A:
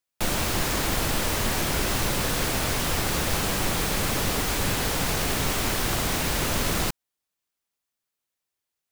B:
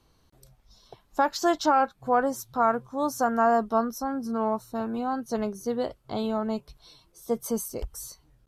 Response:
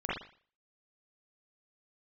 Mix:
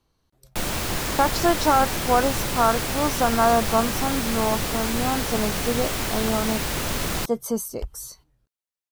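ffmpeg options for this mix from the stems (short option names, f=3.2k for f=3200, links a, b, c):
-filter_complex "[0:a]adelay=350,volume=-1dB[a];[1:a]volume=3dB[b];[a][b]amix=inputs=2:normalize=0,agate=range=-9dB:threshold=-51dB:ratio=16:detection=peak"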